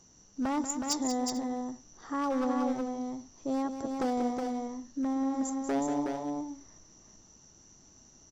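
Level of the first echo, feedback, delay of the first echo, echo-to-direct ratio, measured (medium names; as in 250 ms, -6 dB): -9.0 dB, no regular repeats, 187 ms, -3.0 dB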